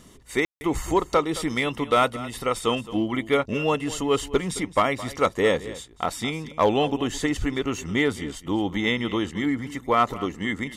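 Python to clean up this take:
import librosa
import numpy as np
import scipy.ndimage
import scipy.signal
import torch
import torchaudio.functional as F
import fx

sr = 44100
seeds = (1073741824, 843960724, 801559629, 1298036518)

y = fx.fix_ambience(x, sr, seeds[0], print_start_s=5.55, print_end_s=6.05, start_s=0.45, end_s=0.61)
y = fx.fix_echo_inverse(y, sr, delay_ms=217, level_db=-16.5)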